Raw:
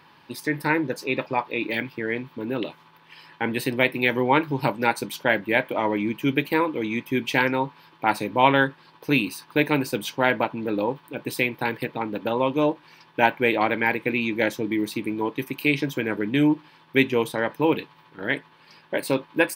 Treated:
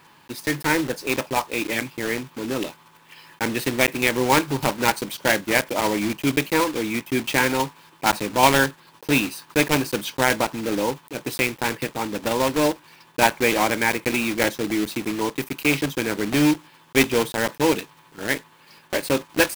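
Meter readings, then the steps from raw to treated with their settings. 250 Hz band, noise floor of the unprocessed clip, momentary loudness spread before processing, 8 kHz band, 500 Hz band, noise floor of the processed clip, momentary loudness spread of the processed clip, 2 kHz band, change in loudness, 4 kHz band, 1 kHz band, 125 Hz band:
+1.0 dB, -55 dBFS, 9 LU, +13.0 dB, +1.0 dB, -53 dBFS, 8 LU, +1.5 dB, +1.5 dB, +5.5 dB, +1.0 dB, +1.0 dB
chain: block floating point 3-bit; gain +1 dB

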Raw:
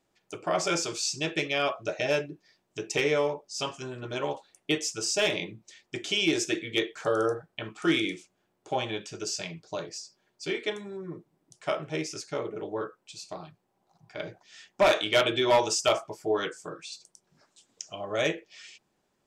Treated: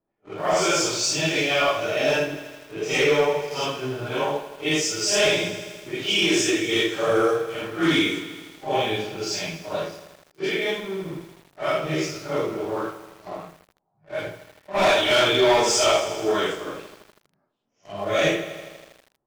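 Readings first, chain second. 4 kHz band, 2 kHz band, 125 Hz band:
+7.0 dB, +7.0 dB, +6.5 dB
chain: phase scrambler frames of 0.2 s; notches 60/120/180/240/300/360/420/480 Hz; low-pass opened by the level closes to 1000 Hz, open at -25.5 dBFS; sample leveller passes 2; lo-fi delay 80 ms, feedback 80%, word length 7-bit, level -13 dB

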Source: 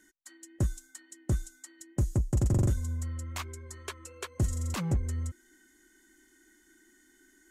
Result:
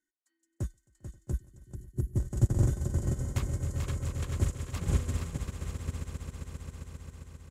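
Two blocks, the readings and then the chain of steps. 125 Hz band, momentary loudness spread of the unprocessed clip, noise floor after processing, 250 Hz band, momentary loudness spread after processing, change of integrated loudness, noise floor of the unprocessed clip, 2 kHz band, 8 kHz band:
+0.5 dB, 19 LU, -81 dBFS, -1.5 dB, 18 LU, -1.0 dB, -64 dBFS, -2.0 dB, -2.5 dB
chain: on a send: swelling echo 0.133 s, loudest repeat 8, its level -10 dB; on the sum: spectral gain 1.31–2.17, 420–9600 Hz -22 dB; bouncing-ball echo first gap 0.44 s, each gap 0.6×, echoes 5; upward expander 2.5:1, over -37 dBFS; gain +1.5 dB

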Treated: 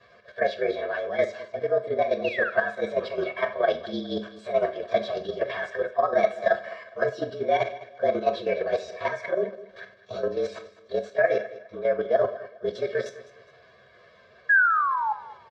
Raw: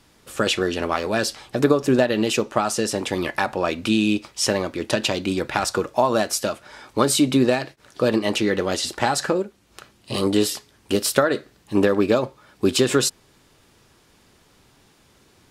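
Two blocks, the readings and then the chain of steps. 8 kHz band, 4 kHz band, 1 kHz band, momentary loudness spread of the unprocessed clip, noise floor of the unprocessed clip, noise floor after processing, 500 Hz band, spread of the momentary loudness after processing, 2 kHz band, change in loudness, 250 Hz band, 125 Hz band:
under -25 dB, -15.5 dB, -1.5 dB, 7 LU, -57 dBFS, -56 dBFS, -2.0 dB, 10 LU, +1.5 dB, -4.5 dB, -16.0 dB, -15.0 dB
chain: inharmonic rescaling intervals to 113%; dynamic EQ 340 Hz, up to +6 dB, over -33 dBFS, Q 0.95; comb 1.8 ms, depth 94%; reverse; compressor 6:1, threshold -29 dBFS, peak gain reduction 19.5 dB; reverse; painted sound fall, 2.24–2.5, 1300–2900 Hz -34 dBFS; level quantiser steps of 10 dB; painted sound fall, 14.49–15.13, 830–1700 Hz -30 dBFS; speaker cabinet 170–3800 Hz, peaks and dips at 170 Hz -8 dB, 320 Hz -6 dB, 670 Hz +9 dB, 950 Hz -5 dB, 1600 Hz +7 dB, 2800 Hz -5 dB; feedback echo 0.206 s, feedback 29%, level -17 dB; Schroeder reverb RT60 0.36 s, combs from 30 ms, DRR 11 dB; gain +6.5 dB

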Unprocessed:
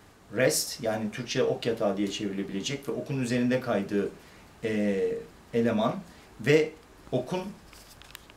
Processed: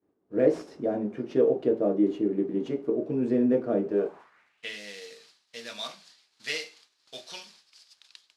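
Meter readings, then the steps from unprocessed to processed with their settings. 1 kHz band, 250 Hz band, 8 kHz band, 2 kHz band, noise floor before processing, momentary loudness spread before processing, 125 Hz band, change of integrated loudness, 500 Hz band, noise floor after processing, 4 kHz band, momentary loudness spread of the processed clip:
-6.0 dB, +1.5 dB, -13.0 dB, -6.5 dB, -54 dBFS, 12 LU, -7.5 dB, +1.0 dB, +0.5 dB, -72 dBFS, -3.5 dB, 18 LU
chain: CVSD 64 kbps; expander -42 dBFS; band-pass sweep 350 Hz -> 4400 Hz, 3.8–4.79; gain +9 dB

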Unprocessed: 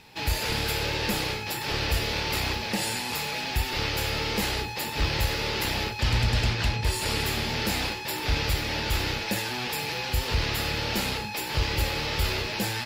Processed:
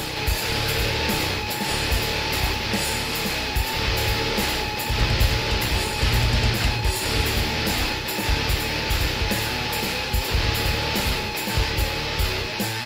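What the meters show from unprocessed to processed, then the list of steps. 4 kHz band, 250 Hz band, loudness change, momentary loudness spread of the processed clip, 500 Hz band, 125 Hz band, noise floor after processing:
+4.5 dB, +4.5 dB, +4.5 dB, 3 LU, +4.5 dB, +4.5 dB, -28 dBFS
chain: reverse echo 1.128 s -3.5 dB; gain +3 dB

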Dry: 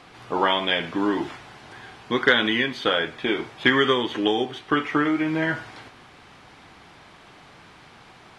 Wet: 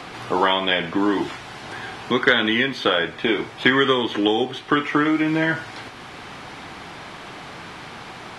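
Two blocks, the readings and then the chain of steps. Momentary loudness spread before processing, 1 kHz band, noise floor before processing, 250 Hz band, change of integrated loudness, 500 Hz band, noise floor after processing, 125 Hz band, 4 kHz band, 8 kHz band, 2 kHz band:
14 LU, +2.5 dB, -50 dBFS, +3.0 dB, +2.5 dB, +2.5 dB, -39 dBFS, +3.0 dB, +2.0 dB, n/a, +2.5 dB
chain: three-band squash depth 40%; gain +3 dB

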